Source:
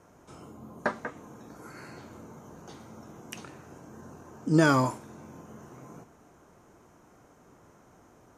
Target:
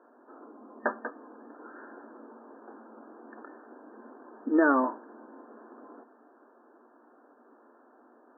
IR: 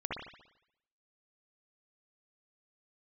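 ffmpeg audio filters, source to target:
-af "afftfilt=real='re*between(b*sr/4096,220,1800)':imag='im*between(b*sr/4096,220,1800)':win_size=4096:overlap=0.75"

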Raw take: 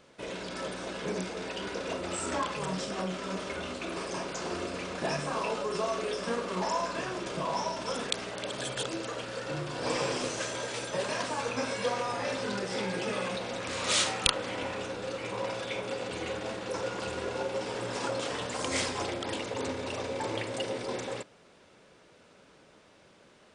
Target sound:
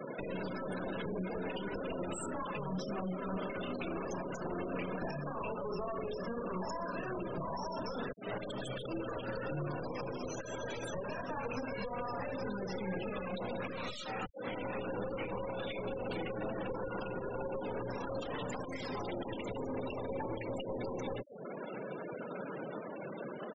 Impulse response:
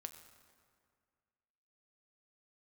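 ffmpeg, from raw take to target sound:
-filter_complex "[0:a]highpass=frequency=120:width=0.5412,highpass=frequency=120:width=1.3066,acompressor=threshold=-41dB:ratio=20,aeval=exprs='clip(val(0),-1,0.00473)':channel_layout=same,asettb=1/sr,asplit=3[link_01][link_02][link_03];[link_01]atrim=end=6.604[link_04];[link_02]atrim=start=6.6:end=7.14,asetpts=PTS-STARTPTS,afade=type=in:duration=0.004:curve=qsin,afade=type=out:start_time=0.536:duration=0.004:curve=qsin,equalizer=frequency=870:width=2.4:gain=-3[link_05];[link_03]atrim=start=7.136[link_06];[link_04][link_05]acrossfade=duration=0.004:curve1=hsin:curve2=qsin[link_07];[link_07][link_06]acrossfade=duration=0.004:curve1=qsin:curve2=hsin,acrossover=split=230[link_08][link_09];[link_09]acompressor=threshold=-49dB:ratio=10[link_10];[link_08][link_10]amix=inputs=2:normalize=0,asettb=1/sr,asplit=3[link_11][link_12][link_13];[link_11]atrim=end=19.034[link_14];[link_12]atrim=start=19.03:end=20.17,asetpts=PTS-STARTPTS,afade=type=in:duration=0.004:curve=qsin,afade=type=out:start_time=1.136:duration=0.004:curve=qsin,highshelf=frequency=7900:gain=4[link_15];[link_13]atrim=start=20.166[link_16];[link_14][link_15]acrossfade=duration=0.004:curve1=hsin:curve2=qsin[link_17];[link_17][link_16]acrossfade=duration=0.004:curve1=qsin:curve2=hsin,alimiter=level_in=22dB:limit=-24dB:level=0:latency=1:release=326,volume=-22dB,asplit=3[link_18][link_19][link_20];[link_19]adelay=119,afreqshift=33,volume=-21.5dB[link_21];[link_20]adelay=238,afreqshift=66,volume=-32dB[link_22];[link_18][link_21][link_22]amix=inputs=3:normalize=0,afftfilt=real='re*gte(hypot(re,im),0.002)':imag='im*gte(hypot(re,im),0.002)':win_size=1024:overlap=0.75,volume=18dB"

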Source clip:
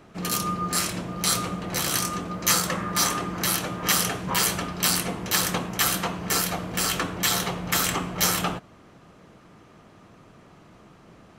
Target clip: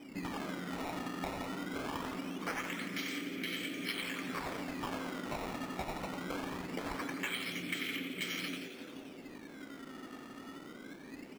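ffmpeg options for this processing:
ffmpeg -i in.wav -filter_complex "[0:a]asplit=3[link_01][link_02][link_03];[link_01]bandpass=frequency=270:width_type=q:width=8,volume=0dB[link_04];[link_02]bandpass=frequency=2290:width_type=q:width=8,volume=-6dB[link_05];[link_03]bandpass=frequency=3010:width_type=q:width=8,volume=-9dB[link_06];[link_04][link_05][link_06]amix=inputs=3:normalize=0,aecho=1:1:91:0.708,acompressor=threshold=-49dB:ratio=16,acrusher=samples=16:mix=1:aa=0.000001:lfo=1:lforange=25.6:lforate=0.22,equalizer=frequency=1400:width=0.35:gain=8,asplit=2[link_07][link_08];[link_08]asplit=6[link_09][link_10][link_11][link_12][link_13][link_14];[link_09]adelay=172,afreqshift=110,volume=-10dB[link_15];[link_10]adelay=344,afreqshift=220,volume=-15.8dB[link_16];[link_11]adelay=516,afreqshift=330,volume=-21.7dB[link_17];[link_12]adelay=688,afreqshift=440,volume=-27.5dB[link_18];[link_13]adelay=860,afreqshift=550,volume=-33.4dB[link_19];[link_14]adelay=1032,afreqshift=660,volume=-39.2dB[link_20];[link_15][link_16][link_17][link_18][link_19][link_20]amix=inputs=6:normalize=0[link_21];[link_07][link_21]amix=inputs=2:normalize=0,volume=9dB" out.wav

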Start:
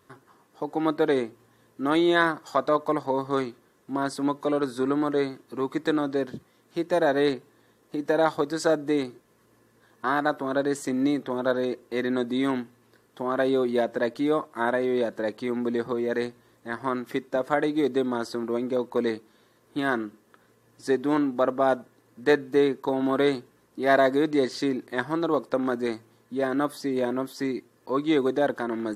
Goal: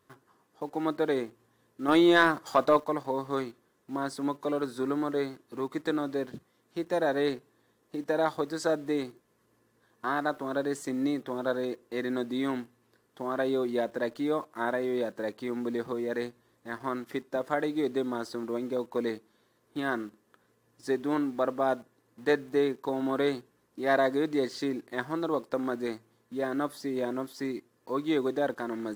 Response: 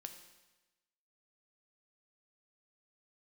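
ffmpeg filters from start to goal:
-filter_complex "[0:a]asplit=2[link_01][link_02];[link_02]acrusher=bits=6:mix=0:aa=0.000001,volume=-9.5dB[link_03];[link_01][link_03]amix=inputs=2:normalize=0,asettb=1/sr,asplit=3[link_04][link_05][link_06];[link_04]atrim=end=1.884[link_07];[link_05]atrim=start=1.88:end=2.8,asetpts=PTS-STARTPTS,afade=type=in:duration=0.004:curve=qsin,afade=type=out:start_time=0.916:duration=0.004:curve=qsin,acontrast=56[link_08];[link_06]atrim=start=2.796[link_09];[link_07][link_08]acrossfade=duration=0.004:curve1=hsin:curve2=qsin[link_10];[link_10][link_09]acrossfade=duration=0.004:curve1=qsin:curve2=hsin,volume=-7.5dB"

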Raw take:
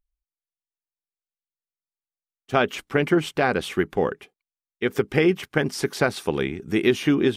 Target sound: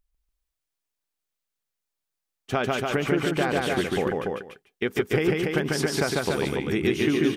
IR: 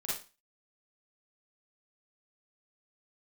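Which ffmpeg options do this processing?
-filter_complex "[0:a]asplit=2[link_01][link_02];[link_02]aecho=0:1:153:0.119[link_03];[link_01][link_03]amix=inputs=2:normalize=0,acompressor=threshold=-33dB:ratio=2.5,asplit=2[link_04][link_05];[link_05]aecho=0:1:145.8|288.6:0.794|0.631[link_06];[link_04][link_06]amix=inputs=2:normalize=0,volume=5.5dB"

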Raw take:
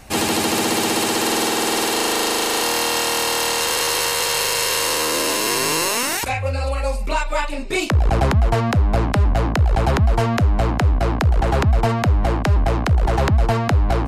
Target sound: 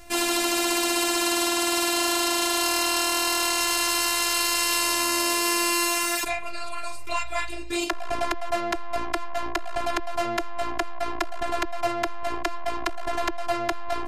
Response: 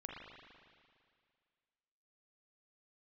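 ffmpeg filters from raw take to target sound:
-filter_complex "[0:a]afftfilt=real='hypot(re,im)*cos(PI*b)':imag='0':win_size=512:overlap=0.75,acrossover=split=590[link_01][link_02];[link_01]asoftclip=type=tanh:threshold=-27dB[link_03];[link_03][link_02]amix=inputs=2:normalize=0"

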